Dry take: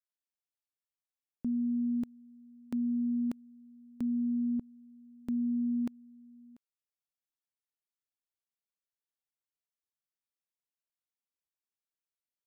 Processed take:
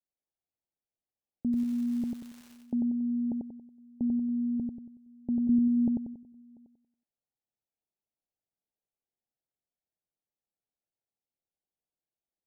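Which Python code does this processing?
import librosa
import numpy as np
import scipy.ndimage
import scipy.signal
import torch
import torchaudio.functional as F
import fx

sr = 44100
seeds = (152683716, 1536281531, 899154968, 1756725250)

y = scipy.signal.sosfilt(scipy.signal.butter(16, 860.0, 'lowpass', fs=sr, output='sos'), x)
y = fx.dmg_crackle(y, sr, seeds[0], per_s=380.0, level_db=-47.0, at=(1.52, 2.52), fade=0.02)
y = fx.low_shelf(y, sr, hz=200.0, db=12.0, at=(5.49, 6.14))
y = fx.echo_feedback(y, sr, ms=93, feedback_pct=39, wet_db=-3.0)
y = F.gain(torch.from_numpy(y), 3.5).numpy()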